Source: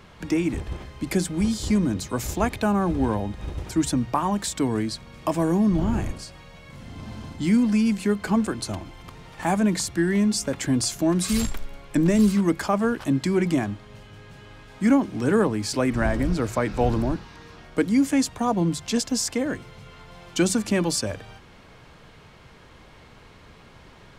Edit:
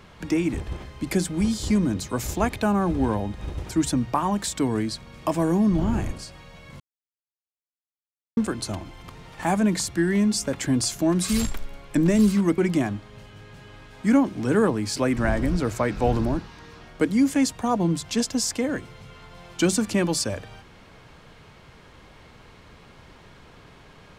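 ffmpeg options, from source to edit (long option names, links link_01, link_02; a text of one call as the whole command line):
ffmpeg -i in.wav -filter_complex "[0:a]asplit=4[link_01][link_02][link_03][link_04];[link_01]atrim=end=6.8,asetpts=PTS-STARTPTS,afade=type=out:start_time=6.796:duration=0.004:curve=hsin[link_05];[link_02]atrim=start=6.8:end=8.37,asetpts=PTS-STARTPTS,volume=0[link_06];[link_03]atrim=start=8.37:end=12.582,asetpts=PTS-STARTPTS,afade=type=in:duration=0.004:curve=hsin[link_07];[link_04]atrim=start=13.348[link_08];[link_05][link_06][link_07]concat=n=3:v=0:a=1[link_09];[link_09][link_08]acrossfade=duration=0.004:curve1=hsin:curve2=hsin" out.wav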